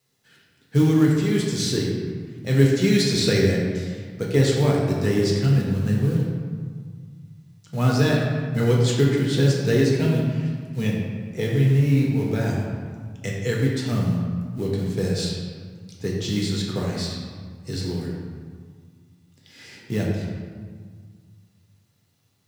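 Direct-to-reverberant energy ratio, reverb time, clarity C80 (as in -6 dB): -3.0 dB, 1.8 s, 2.5 dB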